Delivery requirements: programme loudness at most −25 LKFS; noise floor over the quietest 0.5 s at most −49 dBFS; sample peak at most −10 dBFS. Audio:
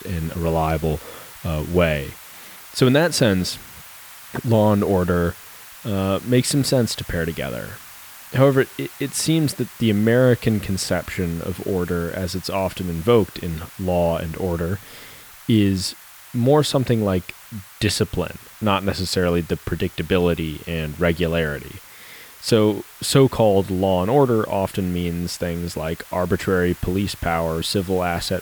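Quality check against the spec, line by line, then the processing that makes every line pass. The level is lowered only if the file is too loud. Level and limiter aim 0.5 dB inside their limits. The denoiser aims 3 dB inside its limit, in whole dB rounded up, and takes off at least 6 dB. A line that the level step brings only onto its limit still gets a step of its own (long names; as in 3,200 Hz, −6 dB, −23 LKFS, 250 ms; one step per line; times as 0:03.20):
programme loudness −21.0 LKFS: out of spec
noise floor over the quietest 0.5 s −42 dBFS: out of spec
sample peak −4.5 dBFS: out of spec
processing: broadband denoise 6 dB, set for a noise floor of −42 dBFS
level −4.5 dB
brickwall limiter −10.5 dBFS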